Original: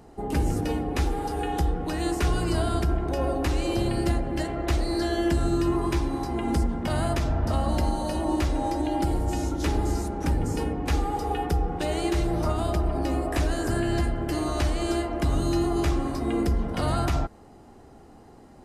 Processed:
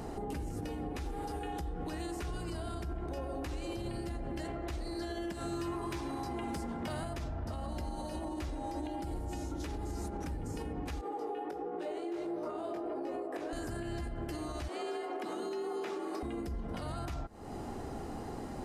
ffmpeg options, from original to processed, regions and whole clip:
-filter_complex "[0:a]asettb=1/sr,asplit=3[a][b][c];[a]atrim=end=5.324[d];[b]atrim=start=5.32:end=7.03,asetpts=PTS-STARTPTS,afade=t=in:d=0.004:c=qsin,afade=t=out:st=1.706:d=0.004:c=qsin,highpass=65,acrossover=split=130|500[e][f][g];[e]acompressor=threshold=-40dB:ratio=4[h];[f]acompressor=threshold=-35dB:ratio=4[i];[g]acompressor=threshold=-34dB:ratio=4[j];[h][i][j]amix=inputs=3:normalize=0,volume=25dB,asoftclip=hard,volume=-25dB[k];[c]atrim=start=7.026[l];[d][k]acrossfade=d=0.004:c1=hsin:c2=qsin[m];[m][l]acrossfade=d=0.004:c1=qsin:c2=hsin,asettb=1/sr,asplit=3[n][o][p];[n]atrim=end=11.014[q];[o]atrim=start=11.01:end=13.53,asetpts=PTS-STARTPTS,afade=t=in:d=0.004:c=qsin,afade=t=out:st=2.516:d=0.004:c=qsin,highpass=f=390:t=q:w=2.1,highshelf=f=3k:g=-11,flanger=delay=16.5:depth=4.3:speed=1.4[r];[p]atrim=start=13.526[s];[q][r]acrossfade=d=0.004:c1=hsin:c2=qsin[t];[t][s]acrossfade=d=0.004:c1=qsin:c2=hsin,asettb=1/sr,asplit=3[u][v][w];[u]atrim=end=14.684[x];[v]atrim=start=14.68:end=16.23,asetpts=PTS-STARTPTS,afade=t=in:d=0.004:c=qsin,afade=t=out:st=1.546:d=0.004:c=qsin,acrossover=split=3900[y][z];[z]acompressor=threshold=-47dB:ratio=4:attack=1:release=60[aa];[y][aa]amix=inputs=2:normalize=0,highpass=f=210:w=0.5412,highpass=f=210:w=1.3066,afreqshift=50[ab];[w]atrim=start=16.226[ac];[x][ab]acrossfade=d=0.004:c1=hsin:c2=qsin[ad];[ad][ac]acrossfade=d=0.004:c1=qsin:c2=hsin,acompressor=threshold=-39dB:ratio=6,alimiter=level_in=15dB:limit=-24dB:level=0:latency=1:release=132,volume=-15dB,volume=8.5dB"

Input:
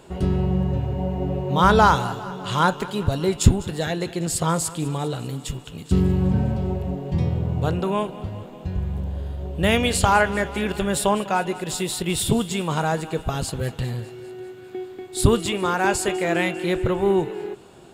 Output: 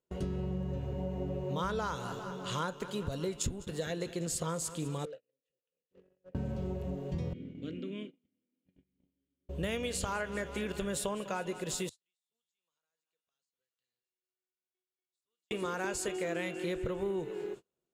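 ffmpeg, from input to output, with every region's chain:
-filter_complex "[0:a]asettb=1/sr,asplit=3[a][b][c];[a]atrim=end=5.054[d];[b]atrim=start=5.05:end=6.35,asetpts=PTS-STARTPTS,afade=t=in:d=0.004:c=qsin,afade=t=out:st=1.296:d=0.004:c=qsin,asplit=3[e][f][g];[e]bandpass=f=530:t=q:w=8,volume=0dB[h];[f]bandpass=f=1.84k:t=q:w=8,volume=-6dB[i];[g]bandpass=f=2.48k:t=q:w=8,volume=-9dB[j];[h][i][j]amix=inputs=3:normalize=0,asoftclip=type=hard:threshold=-34.5dB[k];[c]atrim=start=6.346[l];[d][k]acrossfade=d=0.004:c1=hsin:c2=qsin[m];[m][l]acrossfade=d=0.004:c1=qsin:c2=hsin,asettb=1/sr,asplit=3[n][o][p];[n]atrim=end=7.334[q];[o]atrim=start=7.33:end=9.49,asetpts=PTS-STARTPTS,afade=t=in:d=0.004:c=qsin,afade=t=out:st=2.156:d=0.004:c=qsin,asplit=3[r][s][t];[r]bandpass=f=270:t=q:w=8,volume=0dB[u];[s]bandpass=f=2.29k:t=q:w=8,volume=-6dB[v];[t]bandpass=f=3.01k:t=q:w=8,volume=-9dB[w];[u][v][w]amix=inputs=3:normalize=0,acontrast=86[x];[p]atrim=start=9.486[y];[q][x]acrossfade=d=0.004:c1=hsin:c2=qsin[z];[z][y]acrossfade=d=0.004:c1=qsin:c2=hsin,asettb=1/sr,asplit=3[aa][ab][ac];[aa]atrim=end=11.894[ad];[ab]atrim=start=11.89:end=15.51,asetpts=PTS-STARTPTS,afade=t=in:d=0.004:c=qsin,afade=t=out:st=3.616:d=0.004:c=qsin,aderivative,acompressor=threshold=-42dB:ratio=10:attack=3.2:release=140:knee=1:detection=peak,lowpass=5.3k[ae];[ac]atrim=start=15.506[af];[ad][ae]acrossfade=d=0.004:c1=hsin:c2=qsin[ag];[ag][af]acrossfade=d=0.004:c1=qsin:c2=hsin,equalizer=f=100:t=o:w=0.33:g=-9,equalizer=f=500:t=o:w=0.33:g=6,equalizer=f=800:t=o:w=0.33:g=-7,equalizer=f=6.3k:t=o:w=0.33:g=6,acompressor=threshold=-23dB:ratio=6,agate=range=-34dB:threshold=-35dB:ratio=16:detection=peak,volume=-8.5dB"

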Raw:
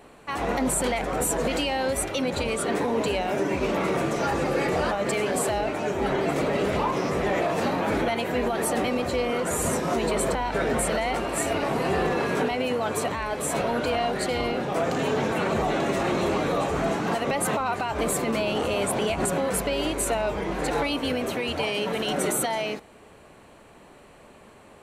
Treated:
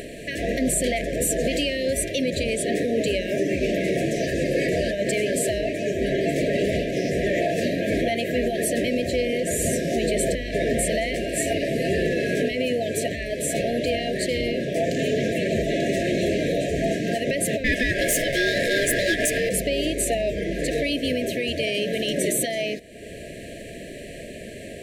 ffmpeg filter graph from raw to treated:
-filter_complex "[0:a]asettb=1/sr,asplit=3[a][b][c];[a]atrim=end=17.644[d];[b]atrim=start=17.64:end=19.49,asetpts=PTS-STARTPTS,afade=t=in:d=0.004:c=qsin,afade=t=out:st=1.846:d=0.004:c=qsin,acontrast=89,asoftclip=type=hard:threshold=-15dB,aeval=exprs='val(0)*sin(2*PI*1000*n/s)':c=same[e];[c]atrim=start=19.486[f];[d][e]acrossfade=d=0.004:c1=hsin:c2=qsin[g];[g][f]acrossfade=d=0.004:c1=qsin:c2=hsin,afftfilt=real='re*(1-between(b*sr/4096,700,1600))':imag='im*(1-between(b*sr/4096,700,1600))':win_size=4096:overlap=0.75,acompressor=mode=upward:threshold=-28dB:ratio=2.5,volume=2.5dB"

